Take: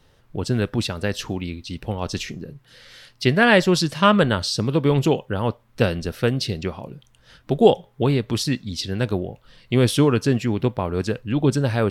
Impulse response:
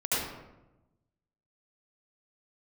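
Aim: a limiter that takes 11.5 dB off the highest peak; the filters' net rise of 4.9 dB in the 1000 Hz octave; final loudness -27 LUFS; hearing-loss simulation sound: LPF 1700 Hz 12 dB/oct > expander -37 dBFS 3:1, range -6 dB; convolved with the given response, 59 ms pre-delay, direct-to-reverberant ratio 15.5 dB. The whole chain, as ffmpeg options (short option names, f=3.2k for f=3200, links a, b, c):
-filter_complex "[0:a]equalizer=f=1k:t=o:g=7,alimiter=limit=-11dB:level=0:latency=1,asplit=2[a][b];[1:a]atrim=start_sample=2205,adelay=59[c];[b][c]afir=irnorm=-1:irlink=0,volume=-25.5dB[d];[a][d]amix=inputs=2:normalize=0,lowpass=1.7k,agate=range=-6dB:threshold=-37dB:ratio=3,volume=-2.5dB"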